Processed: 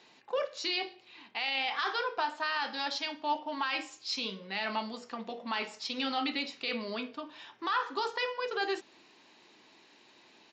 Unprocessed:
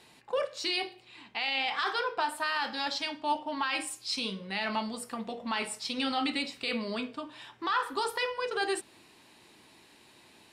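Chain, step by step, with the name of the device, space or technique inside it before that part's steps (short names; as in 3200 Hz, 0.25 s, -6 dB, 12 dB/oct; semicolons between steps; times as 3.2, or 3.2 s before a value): Bluetooth headset (HPF 220 Hz 12 dB/oct; downsampling 16000 Hz; gain -1.5 dB; SBC 64 kbps 16000 Hz)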